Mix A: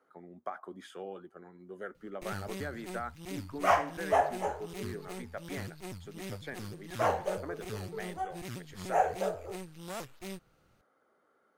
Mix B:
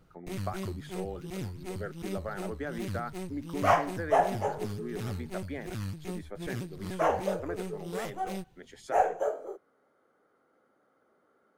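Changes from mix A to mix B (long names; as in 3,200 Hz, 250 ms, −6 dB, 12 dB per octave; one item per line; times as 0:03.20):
first sound: entry −1.95 s
master: add low-shelf EQ 480 Hz +6.5 dB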